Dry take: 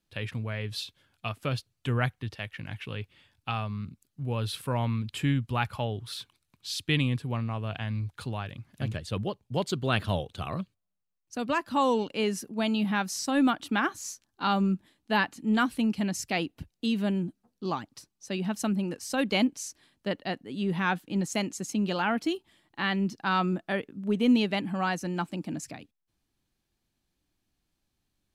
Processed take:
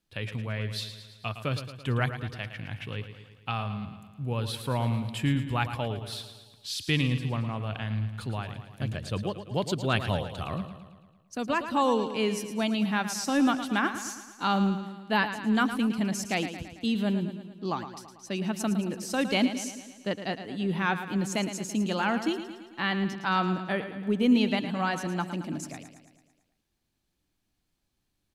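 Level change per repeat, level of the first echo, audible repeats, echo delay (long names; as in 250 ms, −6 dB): −4.5 dB, −10.5 dB, 6, 111 ms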